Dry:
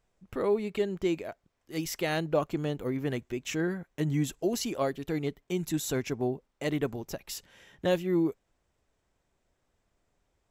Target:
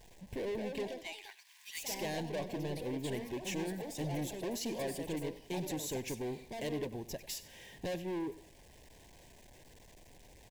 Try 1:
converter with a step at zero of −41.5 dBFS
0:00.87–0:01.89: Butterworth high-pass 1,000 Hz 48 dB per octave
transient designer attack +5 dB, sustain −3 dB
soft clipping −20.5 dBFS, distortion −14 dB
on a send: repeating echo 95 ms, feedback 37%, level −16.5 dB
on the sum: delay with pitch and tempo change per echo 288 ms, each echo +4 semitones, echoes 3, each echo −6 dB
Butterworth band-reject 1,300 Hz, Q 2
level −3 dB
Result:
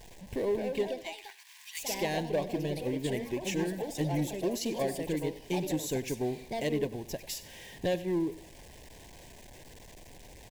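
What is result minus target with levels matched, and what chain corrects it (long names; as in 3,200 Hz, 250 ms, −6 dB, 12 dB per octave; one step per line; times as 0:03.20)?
soft clipping: distortion −9 dB; converter with a step at zero: distortion +7 dB
converter with a step at zero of −49 dBFS
0:00.87–0:01.89: Butterworth high-pass 1,000 Hz 48 dB per octave
transient designer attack +5 dB, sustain −3 dB
soft clipping −32 dBFS, distortion −5 dB
on a send: repeating echo 95 ms, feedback 37%, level −16.5 dB
on the sum: delay with pitch and tempo change per echo 288 ms, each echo +4 semitones, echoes 3, each echo −6 dB
Butterworth band-reject 1,300 Hz, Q 2
level −3 dB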